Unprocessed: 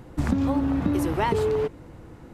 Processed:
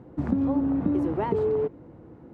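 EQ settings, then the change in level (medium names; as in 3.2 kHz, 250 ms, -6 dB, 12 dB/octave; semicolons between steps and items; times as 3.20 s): band-pass filter 310 Hz, Q 0.59; 0.0 dB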